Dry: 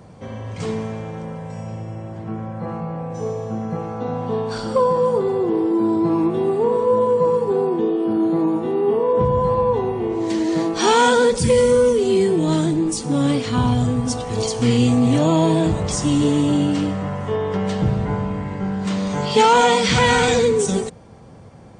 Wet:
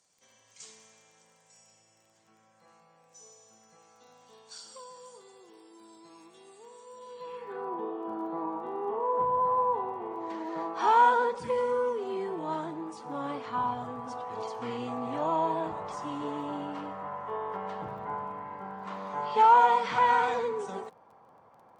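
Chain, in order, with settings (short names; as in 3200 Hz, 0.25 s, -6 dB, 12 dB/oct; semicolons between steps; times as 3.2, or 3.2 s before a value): band-pass sweep 6900 Hz -> 990 Hz, 6.95–7.75; crackle 24/s -50 dBFS; gain -2.5 dB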